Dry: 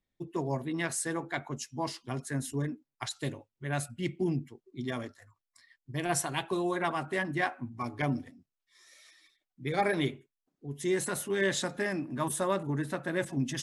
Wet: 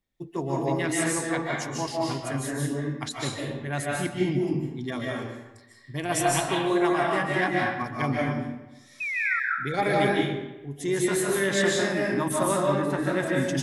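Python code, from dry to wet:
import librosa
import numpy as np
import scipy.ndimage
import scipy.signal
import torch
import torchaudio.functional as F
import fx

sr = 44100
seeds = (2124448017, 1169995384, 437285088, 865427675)

y = fx.spec_paint(x, sr, seeds[0], shape='fall', start_s=9.0, length_s=0.4, low_hz=1300.0, high_hz=2600.0, level_db=-32.0)
y = fx.rev_freeverb(y, sr, rt60_s=1.0, hf_ratio=0.75, predelay_ms=110, drr_db=-3.5)
y = y * librosa.db_to_amplitude(2.0)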